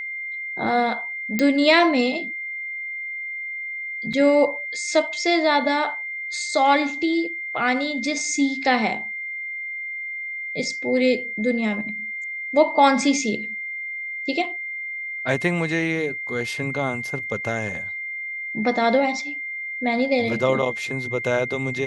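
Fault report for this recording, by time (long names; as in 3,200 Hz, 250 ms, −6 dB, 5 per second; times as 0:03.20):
whistle 2,100 Hz −28 dBFS
0:01.39: click −7 dBFS
0:04.13: drop-out 4.6 ms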